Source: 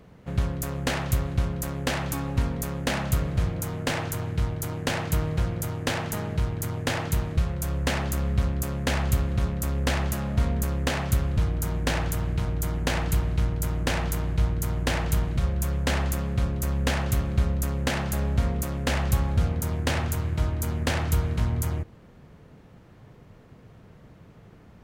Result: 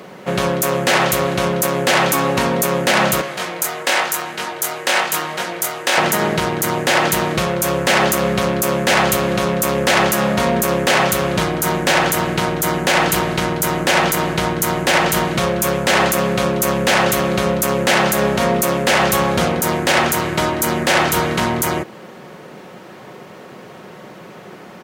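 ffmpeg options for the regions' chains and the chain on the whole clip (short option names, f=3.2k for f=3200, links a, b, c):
-filter_complex "[0:a]asettb=1/sr,asplit=3[a][b][c];[a]atrim=end=3.214[d];[b]atrim=start=3.21:end=5.98,asetpts=PTS-STARTPTS,afade=t=in:d=0.004:c=qsin,afade=t=out:st=2.766:d=0.004:c=qsin,highpass=f=780:p=1,flanger=delay=20:depth=4.3:speed=1[e];[c]atrim=start=5.976[f];[d][e]acrossfade=d=0.004:c1=hsin:c2=qsin[g];[g][f]acrossfade=d=0.004:c1=qsin:c2=hsin,highpass=330,aecho=1:1:5.4:0.38,alimiter=level_in=22.5dB:limit=-1dB:release=50:level=0:latency=1,volume=-3dB"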